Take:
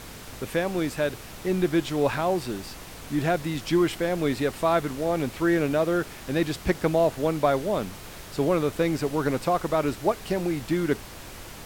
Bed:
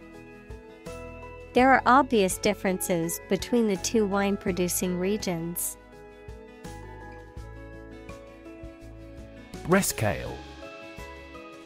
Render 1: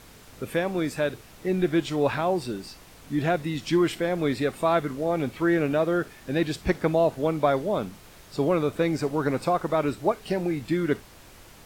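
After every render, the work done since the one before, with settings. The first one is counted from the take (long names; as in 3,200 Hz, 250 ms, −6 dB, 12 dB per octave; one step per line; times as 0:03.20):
noise reduction from a noise print 8 dB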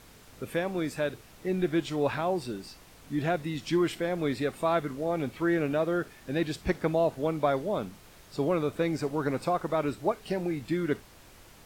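level −4 dB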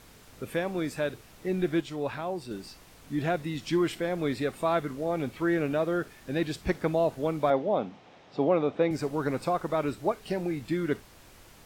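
0:01.81–0:02.51: clip gain −4.5 dB
0:07.50–0:08.91: loudspeaker in its box 140–4,800 Hz, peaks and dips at 260 Hz +4 dB, 520 Hz +4 dB, 770 Hz +9 dB, 1,500 Hz −3 dB, 4,500 Hz −7 dB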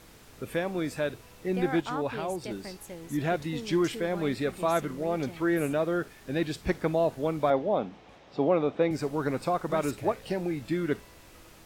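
mix in bed −16.5 dB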